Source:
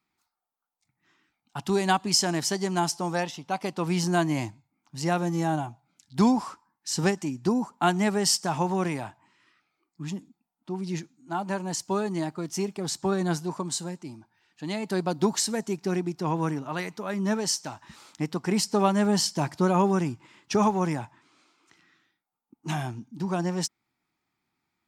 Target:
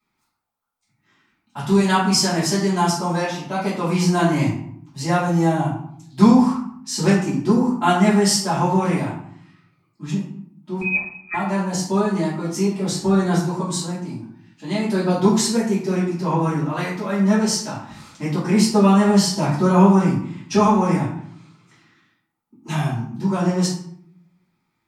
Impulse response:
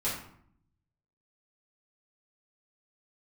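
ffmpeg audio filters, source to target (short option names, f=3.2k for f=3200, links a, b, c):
-filter_complex "[0:a]asettb=1/sr,asplit=3[a][b][c];[a]atrim=end=10.814[d];[b]atrim=start=10.81:end=11.34,asetpts=PTS-STARTPTS,afade=t=in:d=0.004:c=qsin,afade=t=out:st=0.526:d=0.004:c=qsin,lowpass=f=2.3k:t=q:w=0.5098,lowpass=f=2.3k:t=q:w=0.6013,lowpass=f=2.3k:t=q:w=0.9,lowpass=f=2.3k:t=q:w=2.563,afreqshift=-2700[e];[c]atrim=start=11.336[f];[d][e]acrossfade=d=0.004:c1=hsin:c2=qsin[g];[g][f]acrossfade=d=0.004:c1=qsin:c2=hsin[h];[1:a]atrim=start_sample=2205[i];[h][i]afir=irnorm=-1:irlink=0"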